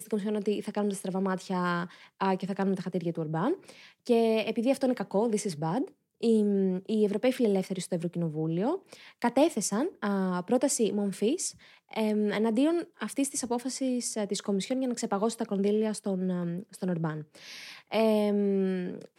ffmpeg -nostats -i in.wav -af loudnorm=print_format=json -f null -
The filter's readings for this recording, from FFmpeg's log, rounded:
"input_i" : "-29.4",
"input_tp" : "-12.1",
"input_lra" : "2.5",
"input_thresh" : "-39.7",